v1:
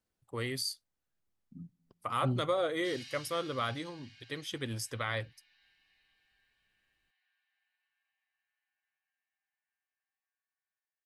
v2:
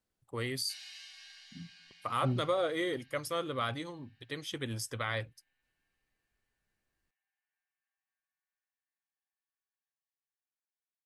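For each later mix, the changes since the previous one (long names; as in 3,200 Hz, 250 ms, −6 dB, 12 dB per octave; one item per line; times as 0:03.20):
background: entry −2.15 s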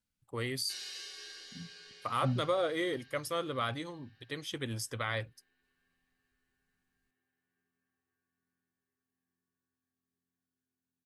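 second voice: add linear-phase brick-wall band-stop 300–2,000 Hz
background: remove Chebyshev high-pass with heavy ripple 610 Hz, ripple 9 dB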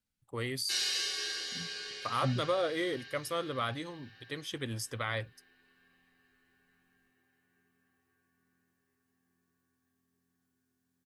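background +11.5 dB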